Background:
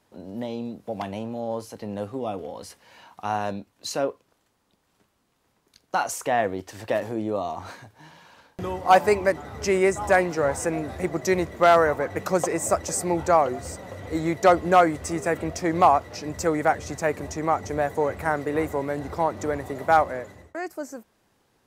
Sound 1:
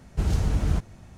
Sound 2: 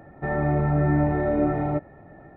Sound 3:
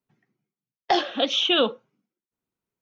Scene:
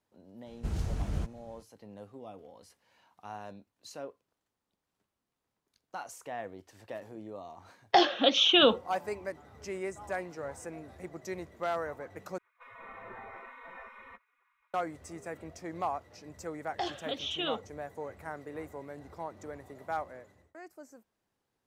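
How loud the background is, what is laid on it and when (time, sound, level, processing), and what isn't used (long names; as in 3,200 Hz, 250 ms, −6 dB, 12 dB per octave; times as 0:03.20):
background −16.5 dB
0:00.46: mix in 1 −9.5 dB
0:07.04: mix in 3 −1 dB
0:12.38: overwrite with 2 −3 dB + gate on every frequency bin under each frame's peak −25 dB weak
0:15.89: mix in 3 −13.5 dB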